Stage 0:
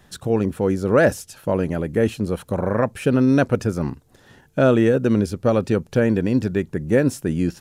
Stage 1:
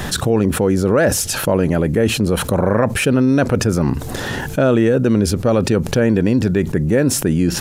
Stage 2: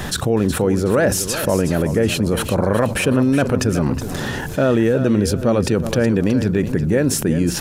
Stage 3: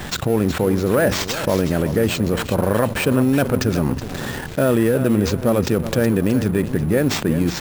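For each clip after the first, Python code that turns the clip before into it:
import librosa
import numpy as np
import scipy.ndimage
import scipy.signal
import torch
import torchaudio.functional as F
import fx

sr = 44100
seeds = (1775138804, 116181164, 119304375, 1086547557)

y1 = fx.env_flatten(x, sr, amount_pct=70)
y2 = fx.echo_feedback(y1, sr, ms=370, feedback_pct=32, wet_db=-11)
y2 = y2 * 10.0 ** (-2.0 / 20.0)
y3 = np.repeat(y2[::4], 4)[:len(y2)]
y3 = np.sign(y3) * np.maximum(np.abs(y3) - 10.0 ** (-33.0 / 20.0), 0.0)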